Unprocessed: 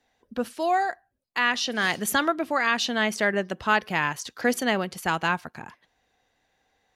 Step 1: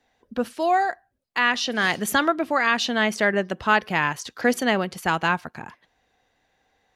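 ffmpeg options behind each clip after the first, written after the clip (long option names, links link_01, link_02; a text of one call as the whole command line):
ffmpeg -i in.wav -af "highshelf=frequency=5000:gain=-4.5,volume=3dB" out.wav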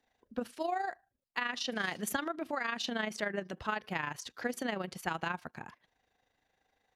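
ffmpeg -i in.wav -af "acompressor=threshold=-22dB:ratio=6,tremolo=f=26:d=0.621,volume=-6dB" out.wav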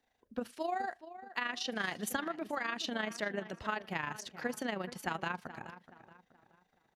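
ffmpeg -i in.wav -filter_complex "[0:a]asplit=2[link_01][link_02];[link_02]adelay=425,lowpass=frequency=2500:poles=1,volume=-13.5dB,asplit=2[link_03][link_04];[link_04]adelay=425,lowpass=frequency=2500:poles=1,volume=0.4,asplit=2[link_05][link_06];[link_06]adelay=425,lowpass=frequency=2500:poles=1,volume=0.4,asplit=2[link_07][link_08];[link_08]adelay=425,lowpass=frequency=2500:poles=1,volume=0.4[link_09];[link_01][link_03][link_05][link_07][link_09]amix=inputs=5:normalize=0,volume=-1.5dB" out.wav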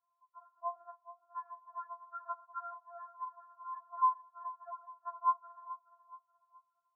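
ffmpeg -i in.wav -af "asuperpass=centerf=1000:order=12:qfactor=2,afftfilt=real='re*4*eq(mod(b,16),0)':imag='im*4*eq(mod(b,16),0)':win_size=2048:overlap=0.75,volume=10.5dB" out.wav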